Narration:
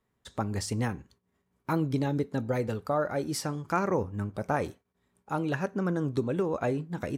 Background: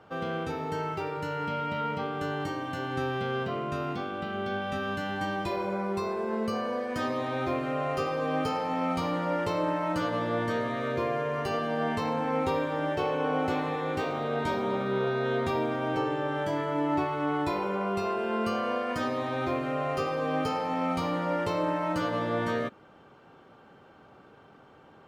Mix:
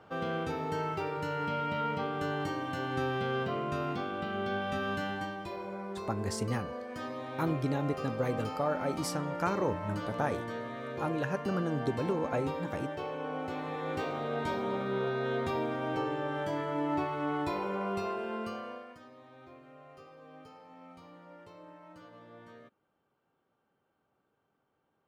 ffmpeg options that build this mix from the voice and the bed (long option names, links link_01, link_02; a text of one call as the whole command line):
ffmpeg -i stem1.wav -i stem2.wav -filter_complex "[0:a]adelay=5700,volume=-3.5dB[link_01];[1:a]volume=3.5dB,afade=type=out:start_time=5.03:duration=0.32:silence=0.421697,afade=type=in:start_time=13.52:duration=0.41:silence=0.562341,afade=type=out:start_time=17.97:duration=1.02:silence=0.105925[link_02];[link_01][link_02]amix=inputs=2:normalize=0" out.wav